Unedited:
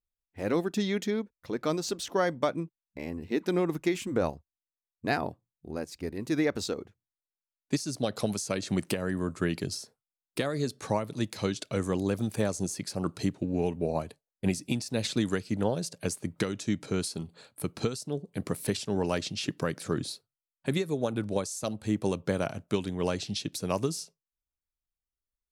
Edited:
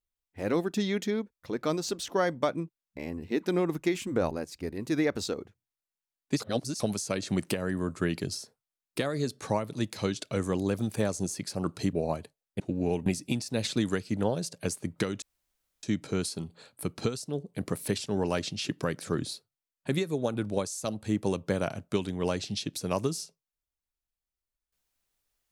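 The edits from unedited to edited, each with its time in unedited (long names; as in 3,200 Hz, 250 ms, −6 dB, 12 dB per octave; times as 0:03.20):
0:04.31–0:05.71: remove
0:07.80–0:08.20: reverse
0:13.33–0:13.79: move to 0:14.46
0:16.62: splice in room tone 0.61 s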